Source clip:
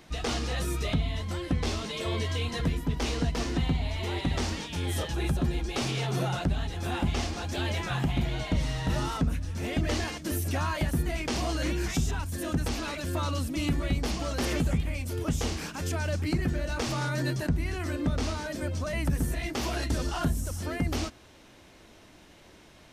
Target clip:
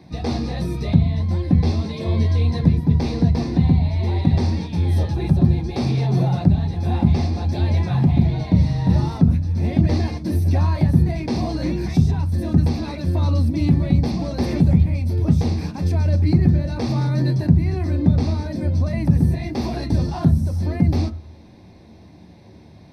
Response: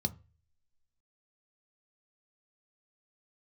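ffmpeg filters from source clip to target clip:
-filter_complex "[0:a]highshelf=frequency=3400:gain=-10[link_01];[1:a]atrim=start_sample=2205[link_02];[link_01][link_02]afir=irnorm=-1:irlink=0"

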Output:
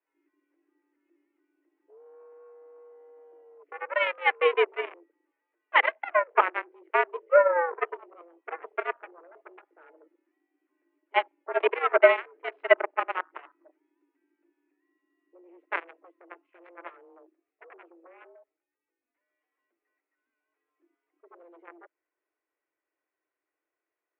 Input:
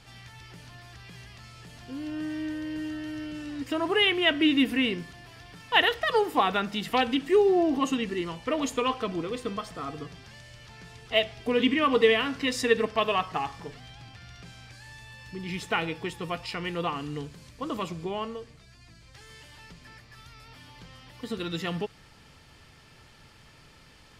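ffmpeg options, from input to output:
ffmpeg -i in.wav -af "afwtdn=0.0251,aeval=exprs='0.447*(cos(1*acos(clip(val(0)/0.447,-1,1)))-cos(1*PI/2))+0.0708*(cos(7*acos(clip(val(0)/0.447,-1,1)))-cos(7*PI/2))':channel_layout=same,highpass=frequency=160:width_type=q:width=0.5412,highpass=frequency=160:width_type=q:width=1.307,lowpass=frequency=2200:width_type=q:width=0.5176,lowpass=frequency=2200:width_type=q:width=0.7071,lowpass=frequency=2200:width_type=q:width=1.932,afreqshift=170,volume=4.5dB" out.wav

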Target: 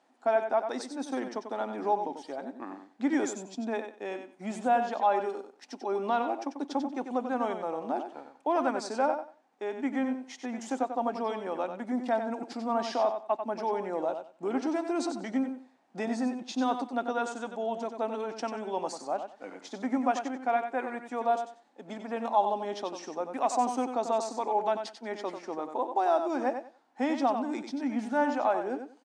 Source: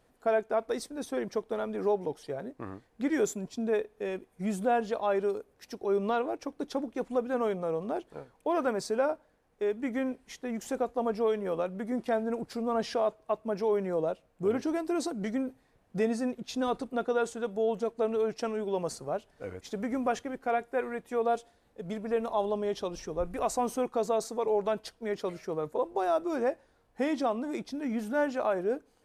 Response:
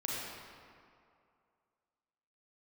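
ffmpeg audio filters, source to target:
-filter_complex "[0:a]highpass=frequency=250:width=0.5412,highpass=frequency=250:width=1.3066,equalizer=frequency=260:width_type=q:width=4:gain=6,equalizer=frequency=450:width_type=q:width=4:gain=-10,equalizer=frequency=830:width_type=q:width=4:gain=9,lowpass=frequency=8100:width=0.5412,lowpass=frequency=8100:width=1.3066,asplit=2[link_01][link_02];[link_02]aecho=0:1:93|186|279:0.398|0.0796|0.0159[link_03];[link_01][link_03]amix=inputs=2:normalize=0"

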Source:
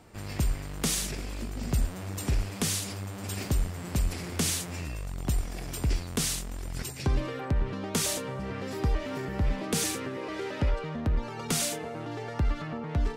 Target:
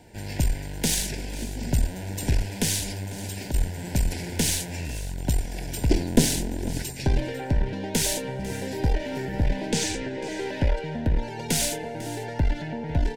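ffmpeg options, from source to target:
ffmpeg -i in.wav -filter_complex "[0:a]asettb=1/sr,asplit=3[link_01][link_02][link_03];[link_01]atrim=end=3.114[link_04];[link_02]atrim=start=3.11:end=3.54,asetpts=PTS-STARTPTS,afade=type=in:duration=0.004:curve=qsin,afade=type=out:start_time=0.426:duration=0.004:curve=qsin,acompressor=threshold=-34dB:ratio=6[link_05];[link_03]atrim=start=3.536[link_06];[link_04][link_05]acrossfade=duration=0.004:curve1=hsin:curve2=qsin[link_07];[link_07][link_06]acrossfade=duration=0.004:curve1=qsin:curve2=hsin,asettb=1/sr,asplit=3[link_08][link_09][link_10];[link_08]atrim=end=5.904[link_11];[link_09]atrim=start=5.9:end=6.78,asetpts=PTS-STARTPTS,afade=type=in:duration=0.004:curve=qsin,afade=type=out:start_time=0.876:duration=0.004:curve=qsin,equalizer=frequency=300:width=0.64:gain=14.5[link_12];[link_10]atrim=start=6.776[link_13];[link_11][link_12]acrossfade=duration=0.004:curve1=hsin:curve2=qsin[link_14];[link_14][link_13]acrossfade=duration=0.004:curve1=qsin:curve2=hsin,asettb=1/sr,asplit=3[link_15][link_16][link_17];[link_15]atrim=end=9.714[link_18];[link_16]atrim=start=9.71:end=10.39,asetpts=PTS-STARTPTS,afade=type=in:duration=0.004:curve=qsin,afade=type=out:start_time=0.676:duration=0.004:curve=qsin,lowpass=frequency=7900:width=0.5412,lowpass=frequency=7900:width=1.3066[link_19];[link_17]atrim=start=10.386[link_20];[link_18][link_19]acrossfade=duration=0.004:curve1=hsin:curve2=qsin[link_21];[link_21][link_20]acrossfade=duration=0.004:curve1=qsin:curve2=hsin,aeval=exprs='(tanh(7.08*val(0)+0.75)-tanh(0.75))/7.08':channel_layout=same,asuperstop=centerf=1200:order=12:qfactor=2.8,aecho=1:1:498:0.141,volume=8dB" out.wav

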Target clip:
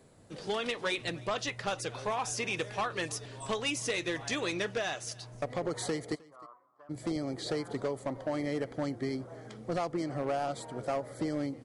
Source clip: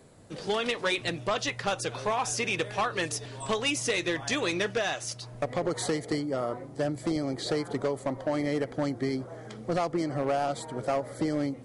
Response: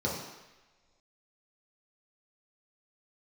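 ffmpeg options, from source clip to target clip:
-filter_complex "[0:a]asplit=3[link_01][link_02][link_03];[link_01]afade=type=out:start_time=6.14:duration=0.02[link_04];[link_02]bandpass=frequency=1100:width_type=q:width=11:csg=0,afade=type=in:start_time=6.14:duration=0.02,afade=type=out:start_time=6.89:duration=0.02[link_05];[link_03]afade=type=in:start_time=6.89:duration=0.02[link_06];[link_04][link_05][link_06]amix=inputs=3:normalize=0,asplit=2[link_07][link_08];[link_08]aecho=0:1:309:0.0631[link_09];[link_07][link_09]amix=inputs=2:normalize=0,volume=-4.5dB"

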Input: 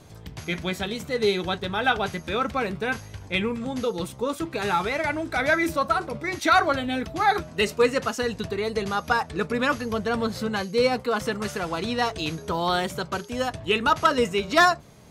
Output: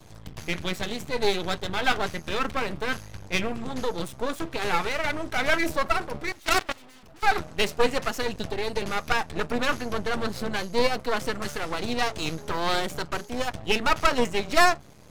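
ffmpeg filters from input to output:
ffmpeg -i in.wav -filter_complex "[0:a]asettb=1/sr,asplit=3[link_01][link_02][link_03];[link_01]atrim=end=6.324[link_04];[link_02]atrim=start=6.32:end=7.23,asetpts=PTS-STARTPTS,afade=type=in:duration=0.004:curve=qsin,afade=type=out:start_time=0.906:duration=0.004:curve=qsin,aeval=exprs='0.398*(cos(1*acos(clip(val(0)/0.398,-1,1)))-cos(1*PI/2))+0.0398*(cos(3*acos(clip(val(0)/0.398,-1,1)))-cos(3*PI/2))+0.0447*(cos(5*acos(clip(val(0)/0.398,-1,1)))-cos(5*PI/2))+0.0447*(cos(7*acos(clip(val(0)/0.398,-1,1)))-cos(7*PI/2))+0.0562*(cos(8*acos(clip(val(0)/0.398,-1,1)))-cos(8*PI/2))':channel_layout=same[link_05];[link_03]atrim=start=7.226[link_06];[link_04][link_05]acrossfade=duration=0.004:curve1=hsin:curve2=qsin[link_07];[link_07][link_06]acrossfade=duration=0.004:curve1=qsin:curve2=hsin,aeval=exprs='max(val(0),0)':channel_layout=same,volume=2.5dB" out.wav

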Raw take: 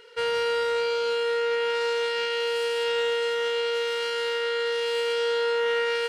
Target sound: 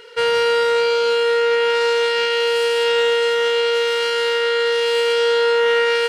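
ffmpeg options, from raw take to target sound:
ffmpeg -i in.wav -af "equalizer=frequency=62:width_type=o:width=0.54:gain=-6.5,volume=8.5dB" out.wav

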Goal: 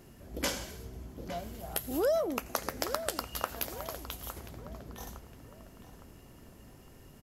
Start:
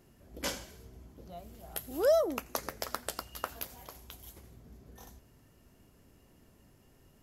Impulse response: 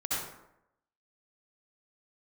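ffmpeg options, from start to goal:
-filter_complex "[0:a]acompressor=threshold=-37dB:ratio=3,asplit=2[link_01][link_02];[link_02]adelay=860,lowpass=frequency=2500:poles=1,volume=-11dB,asplit=2[link_03][link_04];[link_04]adelay=860,lowpass=frequency=2500:poles=1,volume=0.43,asplit=2[link_05][link_06];[link_06]adelay=860,lowpass=frequency=2500:poles=1,volume=0.43,asplit=2[link_07][link_08];[link_08]adelay=860,lowpass=frequency=2500:poles=1,volume=0.43[link_09];[link_03][link_05][link_07][link_09]amix=inputs=4:normalize=0[link_10];[link_01][link_10]amix=inputs=2:normalize=0,volume=7.5dB"

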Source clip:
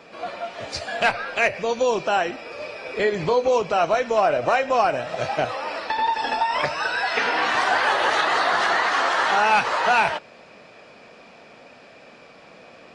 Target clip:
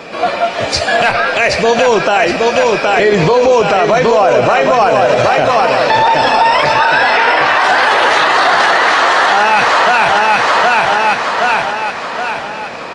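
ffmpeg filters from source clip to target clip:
ffmpeg -i in.wav -filter_complex "[0:a]asettb=1/sr,asplit=3[link_01][link_02][link_03];[link_01]atrim=end=6.734[link_04];[link_02]atrim=start=6.73:end=7.64,asetpts=PTS-STARTPTS,afade=type=in:duration=0.004:curve=qsin,afade=type=out:start_time=0.906:duration=0.004:curve=qsin,bass=frequency=250:gain=-13,treble=frequency=4000:gain=-9[link_05];[link_03]atrim=start=7.636[link_06];[link_04][link_05]acrossfade=duration=0.004:curve1=hsin:curve2=qsin[link_07];[link_07][link_06]acrossfade=duration=0.004:curve1=qsin:curve2=hsin,asplit=2[link_08][link_09];[link_09]aecho=0:1:769|1538|2307|3076|3845|4614:0.531|0.26|0.127|0.0625|0.0306|0.015[link_10];[link_08][link_10]amix=inputs=2:normalize=0,alimiter=level_in=18dB:limit=-1dB:release=50:level=0:latency=1,volume=-1dB" out.wav

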